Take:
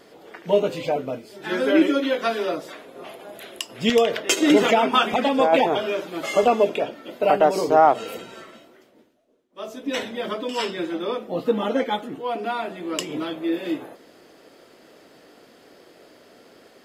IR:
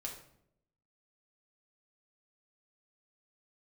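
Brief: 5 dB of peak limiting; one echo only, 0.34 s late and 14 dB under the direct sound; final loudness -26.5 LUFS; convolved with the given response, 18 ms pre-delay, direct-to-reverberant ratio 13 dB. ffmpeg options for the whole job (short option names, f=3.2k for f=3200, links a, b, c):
-filter_complex "[0:a]alimiter=limit=-10dB:level=0:latency=1,aecho=1:1:340:0.2,asplit=2[a][b];[1:a]atrim=start_sample=2205,adelay=18[c];[b][c]afir=irnorm=-1:irlink=0,volume=-11.5dB[d];[a][d]amix=inputs=2:normalize=0,volume=-3dB"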